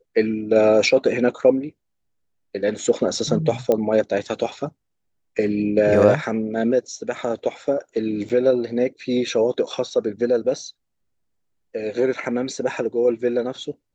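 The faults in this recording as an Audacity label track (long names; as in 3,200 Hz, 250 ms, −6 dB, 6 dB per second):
3.720000	3.720000	click −9 dBFS
8.290000	8.300000	drop-out 7.7 ms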